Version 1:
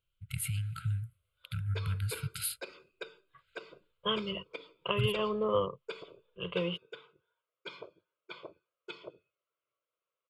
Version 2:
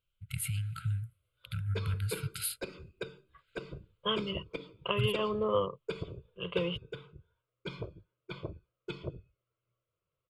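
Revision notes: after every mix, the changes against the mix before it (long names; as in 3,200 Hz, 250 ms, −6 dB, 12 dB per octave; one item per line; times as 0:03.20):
background: remove band-pass filter 530–7,600 Hz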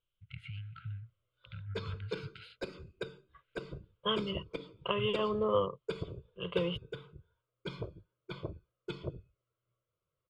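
first voice: add transistor ladder low-pass 3,200 Hz, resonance 45%
master: add parametric band 2,500 Hz −4.5 dB 0.37 octaves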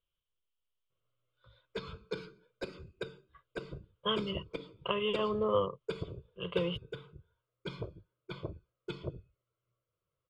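first voice: muted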